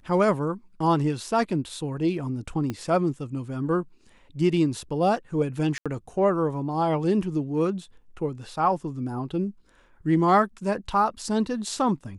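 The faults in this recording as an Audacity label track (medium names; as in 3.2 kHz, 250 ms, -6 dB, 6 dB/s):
2.700000	2.700000	pop -17 dBFS
5.780000	5.860000	dropout 76 ms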